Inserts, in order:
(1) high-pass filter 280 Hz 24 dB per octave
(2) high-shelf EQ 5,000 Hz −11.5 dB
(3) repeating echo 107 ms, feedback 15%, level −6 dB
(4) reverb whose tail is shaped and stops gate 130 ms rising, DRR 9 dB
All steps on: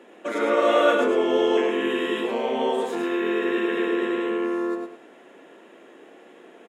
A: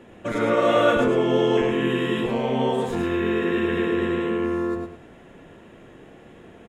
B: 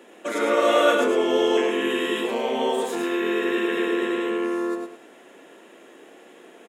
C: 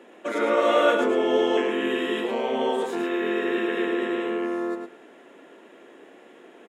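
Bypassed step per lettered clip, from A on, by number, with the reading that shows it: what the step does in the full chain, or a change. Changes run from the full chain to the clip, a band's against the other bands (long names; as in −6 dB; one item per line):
1, 250 Hz band +2.5 dB
2, 4 kHz band +3.0 dB
4, echo-to-direct ratio −3.5 dB to −6.0 dB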